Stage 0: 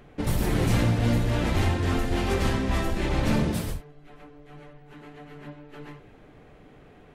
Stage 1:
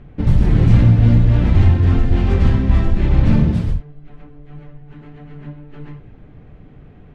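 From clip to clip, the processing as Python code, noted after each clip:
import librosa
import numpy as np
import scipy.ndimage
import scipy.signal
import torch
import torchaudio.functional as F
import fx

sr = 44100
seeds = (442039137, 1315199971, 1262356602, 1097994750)

y = scipy.signal.sosfilt(scipy.signal.butter(2, 5900.0, 'lowpass', fs=sr, output='sos'), x)
y = fx.bass_treble(y, sr, bass_db=14, treble_db=-6)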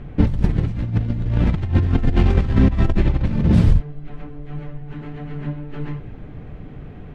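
y = fx.over_compress(x, sr, threshold_db=-16.0, ratio=-0.5)
y = F.gain(torch.from_numpy(y), 1.0).numpy()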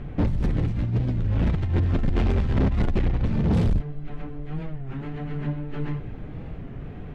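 y = 10.0 ** (-17.0 / 20.0) * np.tanh(x / 10.0 ** (-17.0 / 20.0))
y = fx.record_warp(y, sr, rpm=33.33, depth_cents=160.0)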